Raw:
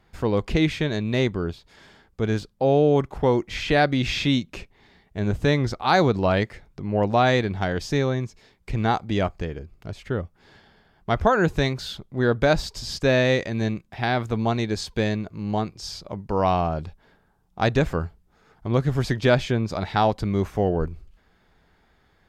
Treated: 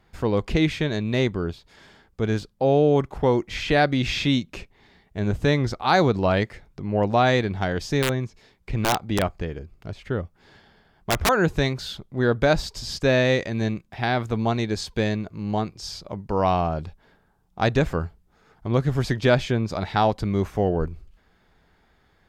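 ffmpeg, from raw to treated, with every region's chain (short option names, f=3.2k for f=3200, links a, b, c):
-filter_complex "[0:a]asettb=1/sr,asplit=3[a][b][c];[a]atrim=end=8.024[d];[b]atrim=start=8.02:end=11.29,asetpts=PTS-STARTPTS,afade=t=in:d=0.004:c=qsin,afade=t=out:st=3.266:d=0.004:c=qsin,acrossover=split=4700[e][f];[f]acompressor=threshold=-58dB:ratio=4:attack=1:release=60[g];[e][g]amix=inputs=2:normalize=0,aeval=exprs='(mod(4.73*val(0)+1,2)-1)/4.73':c=same[h];[c]atrim=start=11.286[i];[d][h]acrossfade=d=0.004:c1=hsin:c2=qsin[j];[j][i]acrossfade=d=0.004:c1=qsin:c2=hsin"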